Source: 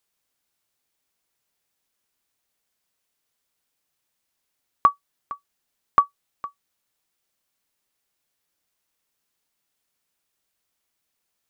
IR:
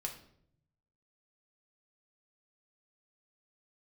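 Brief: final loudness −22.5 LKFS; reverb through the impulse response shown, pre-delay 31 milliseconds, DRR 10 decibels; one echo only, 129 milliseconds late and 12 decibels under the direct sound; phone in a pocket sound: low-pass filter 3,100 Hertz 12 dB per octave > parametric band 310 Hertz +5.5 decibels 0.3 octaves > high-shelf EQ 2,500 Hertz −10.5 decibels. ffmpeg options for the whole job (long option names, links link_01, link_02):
-filter_complex "[0:a]aecho=1:1:129:0.251,asplit=2[link_01][link_02];[1:a]atrim=start_sample=2205,adelay=31[link_03];[link_02][link_03]afir=irnorm=-1:irlink=0,volume=-9.5dB[link_04];[link_01][link_04]amix=inputs=2:normalize=0,lowpass=3100,equalizer=frequency=310:width_type=o:width=0.3:gain=5.5,highshelf=frequency=2500:gain=-10.5,volume=4dB"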